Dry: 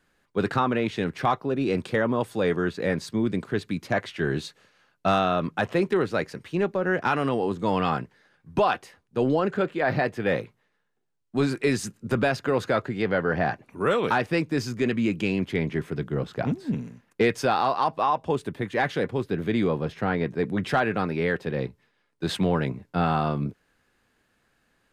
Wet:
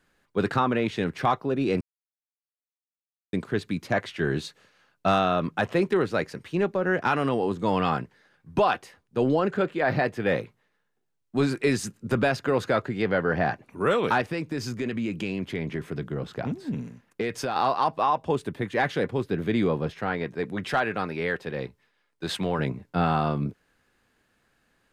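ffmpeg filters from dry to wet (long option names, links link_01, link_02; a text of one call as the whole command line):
ffmpeg -i in.wav -filter_complex "[0:a]asettb=1/sr,asplit=3[link_01][link_02][link_03];[link_01]atrim=end=14.214[link_04];[link_02]atrim=start=14.21:end=17.56,asetpts=PTS-STARTPTS,afade=type=in:duration=0.004:curve=qsin,afade=type=out:start_time=3.346:duration=0.004:curve=qsin,acompressor=threshold=-26dB:ratio=3:attack=3.2:release=140:knee=1:detection=peak[link_05];[link_03]atrim=start=17.556[link_06];[link_04][link_05]acrossfade=duration=0.004:curve1=hsin:curve2=qsin[link_07];[link_07][link_06]acrossfade=duration=0.004:curve1=qsin:curve2=hsin,asettb=1/sr,asplit=3[link_08][link_09][link_10];[link_08]atrim=end=19.914[link_11];[link_09]atrim=start=19.91:end=22.59,asetpts=PTS-STARTPTS,afade=type=in:duration=0.004:curve=qsin,afade=type=out:start_time=2.676:duration=0.004:curve=qsin,equalizer=frequency=140:width=0.32:gain=-6[link_12];[link_10]atrim=start=22.586[link_13];[link_11][link_12]acrossfade=duration=0.004:curve1=hsin:curve2=qsin[link_14];[link_14][link_13]acrossfade=duration=0.004:curve1=qsin:curve2=hsin,asplit=3[link_15][link_16][link_17];[link_15]atrim=end=1.81,asetpts=PTS-STARTPTS,afade=type=out:start_time=1.806:duration=0.004:curve=hsin[link_18];[link_16]atrim=start=1.81:end=3.33,asetpts=PTS-STARTPTS,volume=0[link_19];[link_17]atrim=start=3.33,asetpts=PTS-STARTPTS,afade=type=in:duration=0.004:curve=hsin[link_20];[link_18][link_19][link_20]concat=n=3:v=0:a=1" out.wav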